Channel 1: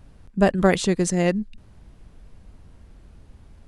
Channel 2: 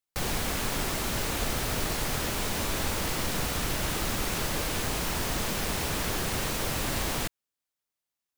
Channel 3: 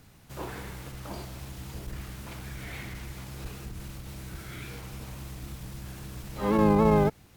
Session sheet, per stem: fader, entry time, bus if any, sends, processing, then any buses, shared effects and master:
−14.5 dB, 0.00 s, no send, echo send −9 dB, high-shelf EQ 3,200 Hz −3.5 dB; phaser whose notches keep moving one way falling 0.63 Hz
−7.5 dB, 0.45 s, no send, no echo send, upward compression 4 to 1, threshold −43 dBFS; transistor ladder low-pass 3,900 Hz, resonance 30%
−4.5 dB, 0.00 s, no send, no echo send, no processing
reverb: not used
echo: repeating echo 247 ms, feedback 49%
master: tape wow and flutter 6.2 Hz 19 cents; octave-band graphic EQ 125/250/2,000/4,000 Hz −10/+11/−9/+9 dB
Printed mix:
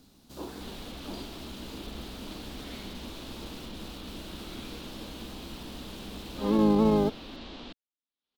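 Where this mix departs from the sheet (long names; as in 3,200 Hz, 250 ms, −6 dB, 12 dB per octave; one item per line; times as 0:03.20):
stem 1: muted
master: missing tape wow and flutter 6.2 Hz 19 cents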